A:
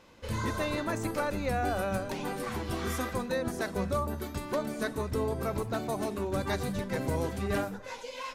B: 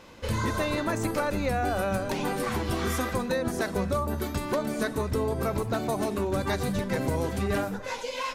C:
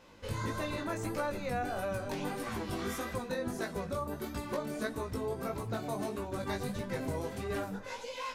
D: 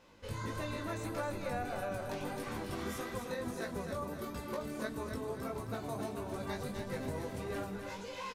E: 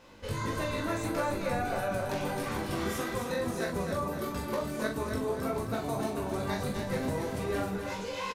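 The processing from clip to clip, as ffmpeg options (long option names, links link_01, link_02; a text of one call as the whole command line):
ffmpeg -i in.wav -af "acompressor=threshold=-33dB:ratio=2.5,volume=7.5dB" out.wav
ffmpeg -i in.wav -af "flanger=delay=17:depth=3.8:speed=1.6,volume=-5dB" out.wav
ffmpeg -i in.wav -af "aecho=1:1:265|530|795|1060|1325:0.473|0.213|0.0958|0.0431|0.0194,volume=-4dB" out.wav
ffmpeg -i in.wav -filter_complex "[0:a]asplit=2[link_01][link_02];[link_02]adelay=42,volume=-6dB[link_03];[link_01][link_03]amix=inputs=2:normalize=0,volume=6dB" out.wav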